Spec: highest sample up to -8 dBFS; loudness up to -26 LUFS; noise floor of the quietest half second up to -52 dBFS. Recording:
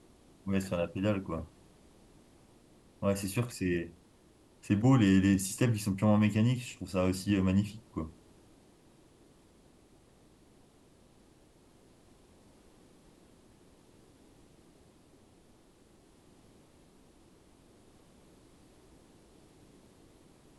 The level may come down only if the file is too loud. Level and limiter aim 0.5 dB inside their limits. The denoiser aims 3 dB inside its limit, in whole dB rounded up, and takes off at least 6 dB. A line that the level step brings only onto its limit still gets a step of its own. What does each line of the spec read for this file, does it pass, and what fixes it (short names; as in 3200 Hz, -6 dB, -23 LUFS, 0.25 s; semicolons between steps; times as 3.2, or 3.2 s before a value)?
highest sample -14.0 dBFS: OK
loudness -30.5 LUFS: OK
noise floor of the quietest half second -62 dBFS: OK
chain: none